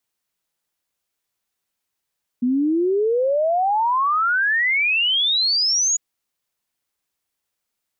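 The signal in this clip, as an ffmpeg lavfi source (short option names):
-f lavfi -i "aevalsrc='0.158*clip(min(t,3.55-t)/0.01,0,1)*sin(2*PI*240*3.55/log(6900/240)*(exp(log(6900/240)*t/3.55)-1))':d=3.55:s=44100"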